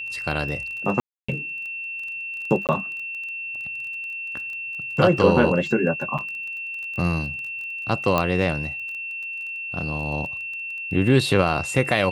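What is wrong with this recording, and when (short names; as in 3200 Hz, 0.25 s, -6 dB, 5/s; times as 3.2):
crackle 18/s -32 dBFS
tone 2700 Hz -29 dBFS
1–1.28 gap 0.285 s
2.67–2.69 gap 18 ms
6.18–6.19 gap 6.3 ms
8.18 pop -8 dBFS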